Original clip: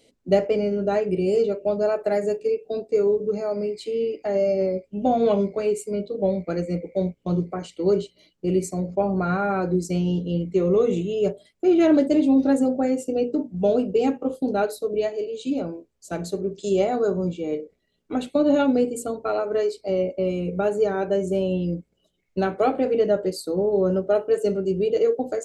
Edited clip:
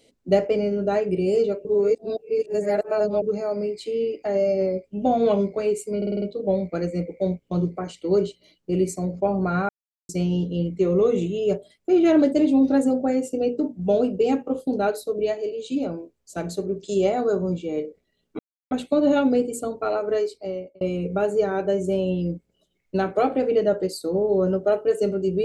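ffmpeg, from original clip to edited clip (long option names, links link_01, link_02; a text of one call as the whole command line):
ffmpeg -i in.wav -filter_complex "[0:a]asplit=12[link_01][link_02][link_03][link_04][link_05][link_06][link_07][link_08][link_09][link_10][link_11][link_12];[link_01]atrim=end=1.652[link_13];[link_02]atrim=start=1.648:end=3.222,asetpts=PTS-STARTPTS,areverse[link_14];[link_03]atrim=start=3.218:end=6.022[link_15];[link_04]atrim=start=5.968:end=6.022[link_16];[link_05]atrim=start=5.968:end=6.022[link_17];[link_06]atrim=start=5.968:end=6.022[link_18];[link_07]atrim=start=5.968:end=6.022[link_19];[link_08]atrim=start=5.968:end=9.44,asetpts=PTS-STARTPTS,afade=type=out:start_time=3.468:duration=0.004:curve=hsin[link_20];[link_09]atrim=start=9.44:end=9.84,asetpts=PTS-STARTPTS,volume=0[link_21];[link_10]atrim=start=9.84:end=18.14,asetpts=PTS-STARTPTS,afade=type=in:duration=0.004:curve=hsin,afade=type=out:start_time=8.296:duration=0.004:curve=hsin,apad=pad_dur=0.32[link_22];[link_11]atrim=start=18.14:end=20.24,asetpts=PTS-STARTPTS,afade=type=in:duration=0.004:curve=hsin,afade=type=out:start_time=1.47:duration=0.63[link_23];[link_12]atrim=start=20.24,asetpts=PTS-STARTPTS,afade=type=in:duration=0.004:curve=hsin[link_24];[link_13][link_14]acrossfade=duration=0.004:curve1=hsin:curve2=hsin[link_25];[link_25][link_15]acrossfade=duration=0.004:curve1=hsin:curve2=hsin[link_26];[link_26][link_16]acrossfade=duration=0.004:curve1=hsin:curve2=hsin[link_27];[link_27][link_17]acrossfade=duration=0.004:curve1=hsin:curve2=hsin[link_28];[link_28][link_18]acrossfade=duration=0.004:curve1=hsin:curve2=hsin[link_29];[link_29][link_19]acrossfade=duration=0.004:curve1=hsin:curve2=hsin[link_30];[link_20][link_21][link_22][link_23][link_24]concat=n=5:v=0:a=1[link_31];[link_30][link_31]acrossfade=duration=0.004:curve1=hsin:curve2=hsin" out.wav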